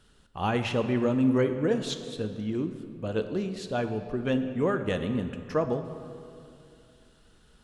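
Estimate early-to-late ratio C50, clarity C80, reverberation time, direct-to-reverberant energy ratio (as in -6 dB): 9.0 dB, 10.0 dB, 2.5 s, 7.5 dB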